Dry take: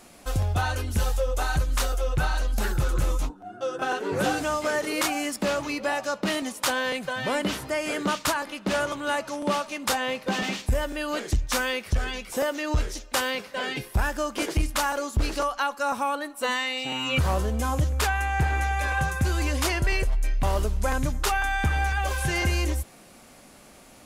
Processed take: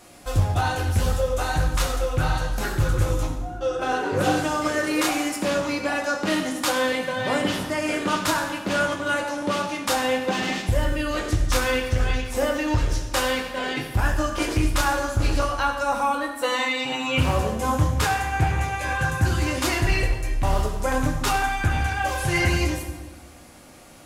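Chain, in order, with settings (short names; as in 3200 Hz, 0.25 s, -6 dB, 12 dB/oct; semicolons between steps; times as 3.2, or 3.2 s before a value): reverb RT60 1.2 s, pre-delay 5 ms, DRR 0 dB; Doppler distortion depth 0.19 ms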